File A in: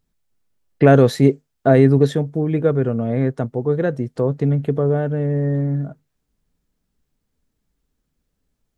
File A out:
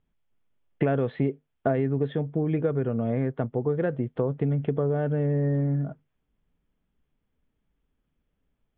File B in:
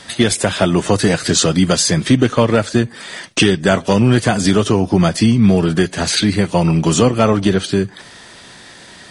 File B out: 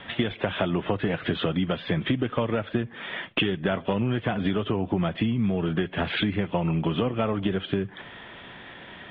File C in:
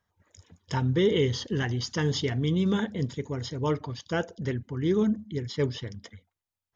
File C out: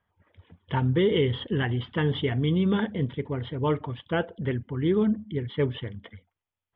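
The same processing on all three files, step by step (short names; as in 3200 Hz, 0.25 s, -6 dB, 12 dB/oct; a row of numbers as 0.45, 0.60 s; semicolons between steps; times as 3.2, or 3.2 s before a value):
Chebyshev low-pass 3400 Hz, order 6; compressor 6:1, threshold -20 dBFS; match loudness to -27 LUFS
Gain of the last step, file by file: -1.5, -2.0, +3.0 dB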